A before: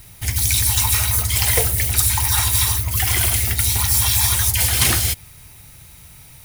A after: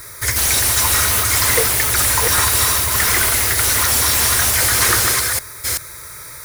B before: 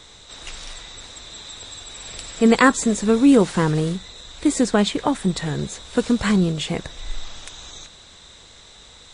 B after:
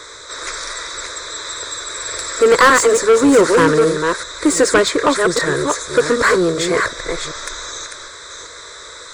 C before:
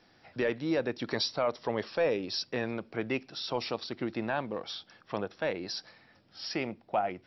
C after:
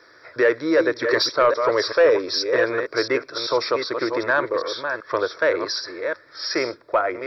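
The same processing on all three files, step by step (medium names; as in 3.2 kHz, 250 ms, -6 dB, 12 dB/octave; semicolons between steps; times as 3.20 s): chunks repeated in reverse 385 ms, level -7 dB; static phaser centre 780 Hz, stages 6; overdrive pedal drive 25 dB, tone 3.8 kHz, clips at -1.5 dBFS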